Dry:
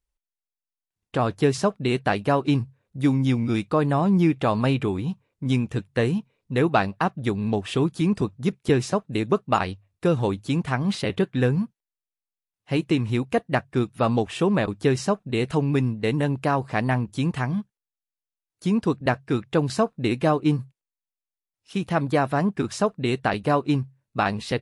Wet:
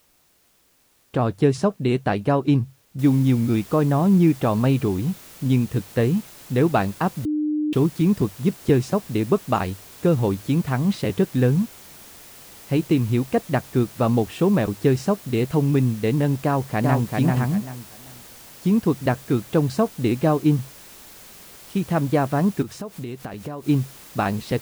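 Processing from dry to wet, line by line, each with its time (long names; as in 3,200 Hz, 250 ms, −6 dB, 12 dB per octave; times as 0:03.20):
0:02.99: noise floor change −58 dB −41 dB
0:07.25–0:07.73: beep over 302 Hz −22.5 dBFS
0:16.44–0:17.15: delay throw 390 ms, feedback 25%, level −3 dB
0:22.62–0:23.67: downward compressor 4 to 1, threshold −32 dBFS
whole clip: tilt shelving filter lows +4 dB, about 700 Hz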